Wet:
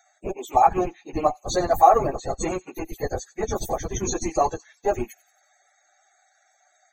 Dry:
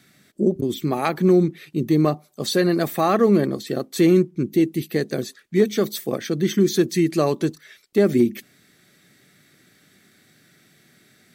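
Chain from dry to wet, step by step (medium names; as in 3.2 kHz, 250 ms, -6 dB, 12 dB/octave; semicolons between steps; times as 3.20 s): rattle on loud lows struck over -21 dBFS, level -24 dBFS; resonant high-pass 790 Hz, resonance Q 4.9; in parallel at -3 dB: Schmitt trigger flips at -23 dBFS; on the sum: peaking EQ 6.6 kHz +12.5 dB 0.21 oct; loudest bins only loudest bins 64; peaking EQ 2.5 kHz -10 dB 2.3 oct; plain phase-vocoder stretch 0.61×; on a send: feedback echo behind a high-pass 90 ms, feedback 43%, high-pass 3.3 kHz, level -17 dB; on the sum: short-mantissa float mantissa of 6-bit; trim +4 dB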